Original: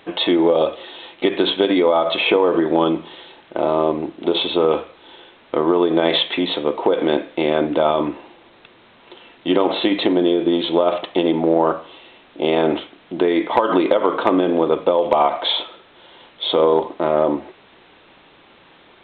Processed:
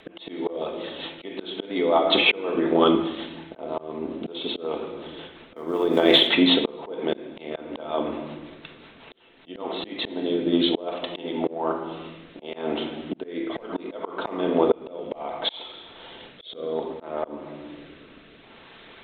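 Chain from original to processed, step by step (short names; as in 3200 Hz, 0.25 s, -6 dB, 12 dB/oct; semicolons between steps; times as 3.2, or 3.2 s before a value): 5.56–6.27 G.711 law mismatch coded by A; harmonic-percussive split percussive +7 dB; rotary speaker horn 5.5 Hz, later 0.65 Hz, at 9.28; reverb RT60 1.0 s, pre-delay 4 ms, DRR 5 dB; auto swell 0.587 s; gain -1.5 dB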